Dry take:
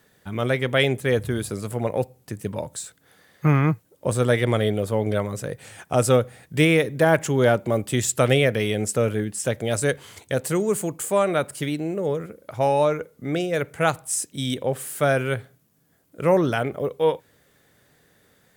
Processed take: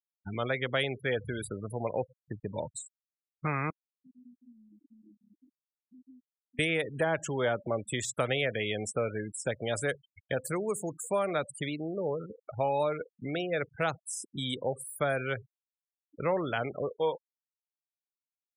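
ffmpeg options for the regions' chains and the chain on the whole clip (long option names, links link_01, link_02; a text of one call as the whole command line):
ffmpeg -i in.wav -filter_complex "[0:a]asettb=1/sr,asplit=3[link_01][link_02][link_03];[link_01]atrim=end=3.704[link_04];[link_02]atrim=start=3.7:end=6.59,asetpts=PTS-STARTPTS,afade=type=in:duration=0.004:curve=qsin,afade=type=out:start_time=2.886:duration=0.004:curve=qsin,asplit=3[link_05][link_06][link_07];[link_05]bandpass=frequency=270:width_type=q:width=8,volume=0dB[link_08];[link_06]bandpass=frequency=2290:width_type=q:width=8,volume=-6dB[link_09];[link_07]bandpass=frequency=3010:width_type=q:width=8,volume=-9dB[link_10];[link_08][link_09][link_10]amix=inputs=3:normalize=0,aecho=1:1:749:0.106,atrim=end_sample=127449,acompressor=threshold=-44dB:ratio=16:attack=3.2:release=140:knee=1:detection=peak[link_11];[link_03]atrim=start=6.586[link_12];[link_04][link_11]acrossfade=duration=0.004:curve1=hsin:curve2=qsin[link_13];[link_13][link_12]acrossfade=duration=0.004:curve1=qsin:curve2=hsin,afftfilt=real='re*gte(hypot(re,im),0.0316)':imag='im*gte(hypot(re,im),0.0316)':win_size=1024:overlap=0.75,highshelf=frequency=9000:gain=6.5,acrossover=split=540|4600[link_14][link_15][link_16];[link_14]acompressor=threshold=-31dB:ratio=4[link_17];[link_15]acompressor=threshold=-24dB:ratio=4[link_18];[link_16]acompressor=threshold=-37dB:ratio=4[link_19];[link_17][link_18][link_19]amix=inputs=3:normalize=0,volume=-4dB" out.wav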